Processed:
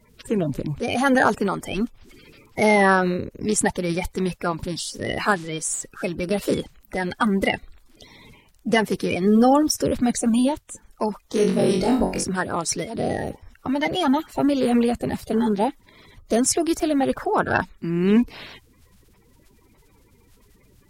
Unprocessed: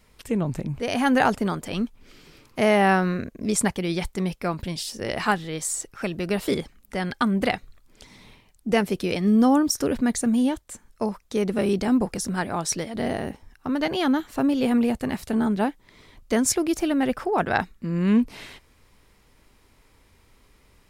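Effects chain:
spectral magnitudes quantised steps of 30 dB
0:11.26–0:12.24: flutter between parallel walls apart 3.7 metres, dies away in 0.39 s
level +2.5 dB

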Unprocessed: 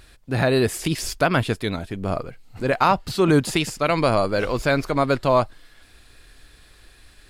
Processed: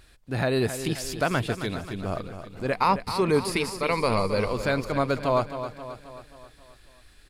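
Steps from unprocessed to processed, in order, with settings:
0:02.73–0:04.48: EQ curve with evenly spaced ripples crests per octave 0.89, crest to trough 9 dB
repeating echo 267 ms, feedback 54%, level −10.5 dB
level −5.5 dB

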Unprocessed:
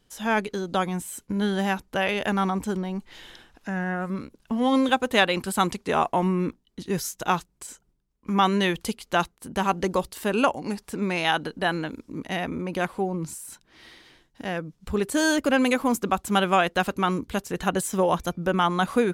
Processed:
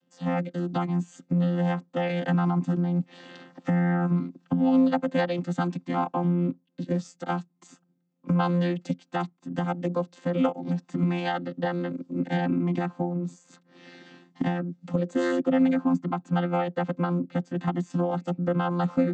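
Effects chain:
channel vocoder with a chord as carrier bare fifth, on F3
camcorder AGC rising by 12 dB per second
0:15.43–0:17.90: low-pass filter 3,800 Hz 6 dB per octave
level −1.5 dB

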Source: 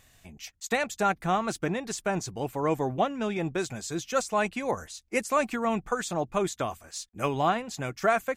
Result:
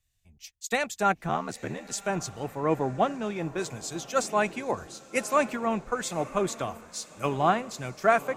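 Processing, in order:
0:01.28–0:01.92: ring modulation 39 Hz
feedback delay with all-pass diffusion 1,021 ms, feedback 58%, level −14 dB
multiband upward and downward expander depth 70%

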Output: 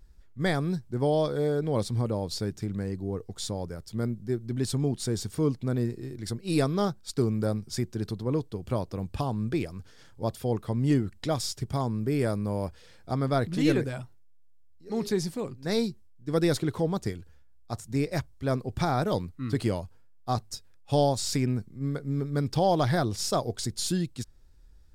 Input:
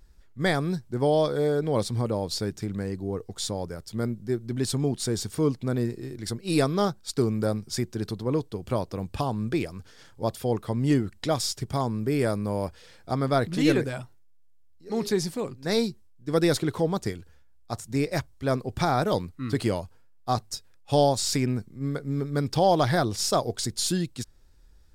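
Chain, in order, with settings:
low-shelf EQ 250 Hz +5 dB
level −4 dB

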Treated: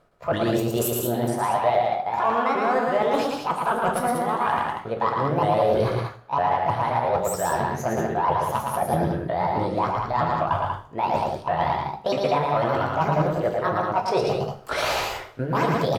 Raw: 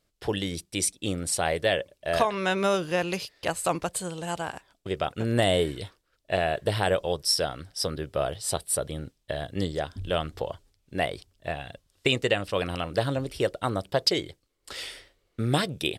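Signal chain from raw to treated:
pitch shifter swept by a sawtooth +7.5 semitones, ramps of 319 ms
drawn EQ curve 210 Hz 0 dB, 1,200 Hz +10 dB, 2,200 Hz −3 dB, 5,100 Hz −13 dB
reversed playback
downward compressor 6 to 1, threshold −44 dBFS, peak gain reduction 29.5 dB
reversed playback
sine wavefolder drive 16 dB, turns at −15 dBFS
on a send: loudspeakers that aren't time-aligned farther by 39 metres −3 dB, 65 metres −5 dB
on the sum: coupled-rooms reverb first 0.41 s, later 1.6 s, from −26 dB, DRR 4 dB

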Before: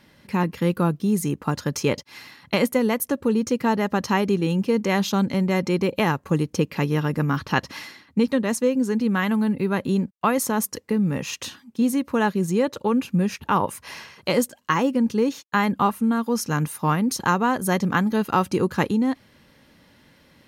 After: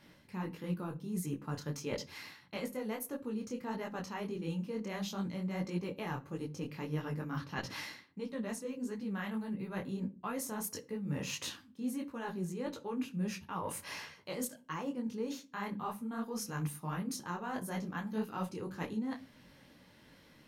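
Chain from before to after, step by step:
reversed playback
downward compressor 10 to 1, threshold −30 dBFS, peak gain reduction 15.5 dB
reversed playback
rectangular room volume 340 cubic metres, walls furnished, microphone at 0.42 metres
micro pitch shift up and down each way 54 cents
level −2 dB

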